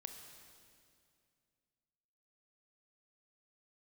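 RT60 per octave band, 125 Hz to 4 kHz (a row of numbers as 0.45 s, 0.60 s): 2.8 s, 2.7 s, 2.4 s, 2.2 s, 2.2 s, 2.1 s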